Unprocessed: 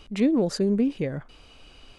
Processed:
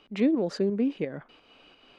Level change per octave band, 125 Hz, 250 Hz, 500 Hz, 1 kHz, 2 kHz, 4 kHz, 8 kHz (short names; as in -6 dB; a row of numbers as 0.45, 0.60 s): -6.5 dB, -3.0 dB, -2.0 dB, -3.0 dB, -1.5 dB, -5.0 dB, under -10 dB